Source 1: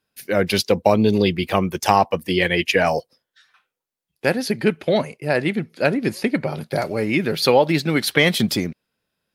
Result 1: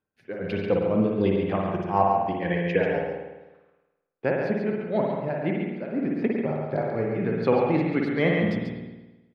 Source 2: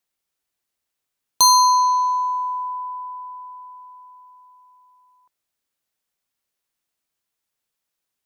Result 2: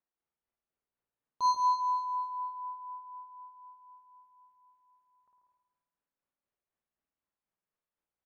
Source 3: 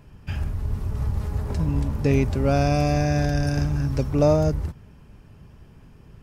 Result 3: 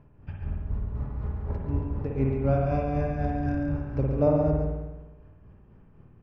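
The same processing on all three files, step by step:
Bessel low-pass 1.3 kHz, order 2; tremolo 4 Hz, depth 93%; on a send: delay 139 ms -6 dB; on the sum: spring tank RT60 1.1 s, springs 52 ms, chirp 70 ms, DRR 0 dB; trim -4 dB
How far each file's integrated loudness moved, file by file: -5.5 LU, -14.5 LU, -5.0 LU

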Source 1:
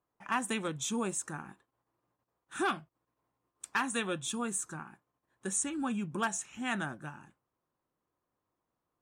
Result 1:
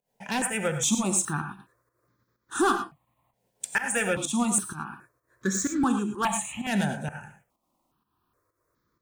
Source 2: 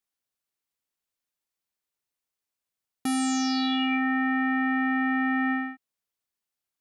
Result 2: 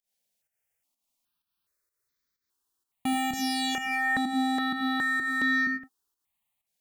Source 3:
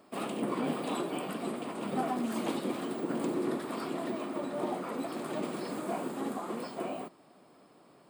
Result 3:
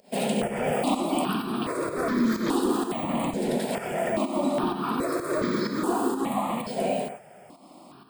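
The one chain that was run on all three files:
in parallel at 0 dB: peak limiter -27 dBFS; on the sum: hard clipper -22.5 dBFS; volume shaper 127 bpm, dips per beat 1, -19 dB, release 158 ms; gated-style reverb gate 130 ms rising, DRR 7 dB; stepped phaser 2.4 Hz 320–2800 Hz; normalise loudness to -27 LUFS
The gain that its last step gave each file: +7.0 dB, +1.5 dB, +7.0 dB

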